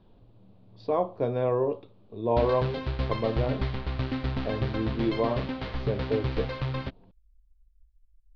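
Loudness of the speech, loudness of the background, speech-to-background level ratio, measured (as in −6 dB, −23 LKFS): −30.0 LKFS, −32.5 LKFS, 2.5 dB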